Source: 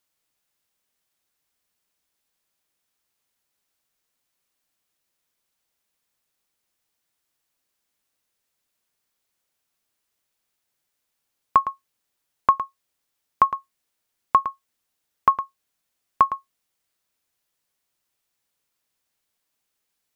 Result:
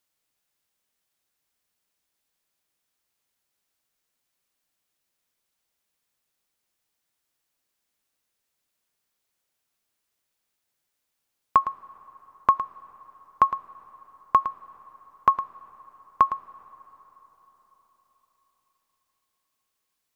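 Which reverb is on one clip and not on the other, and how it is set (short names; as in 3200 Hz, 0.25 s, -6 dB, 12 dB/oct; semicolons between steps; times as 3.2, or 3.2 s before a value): digital reverb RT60 4.6 s, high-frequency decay 0.6×, pre-delay 20 ms, DRR 19 dB; gain -1.5 dB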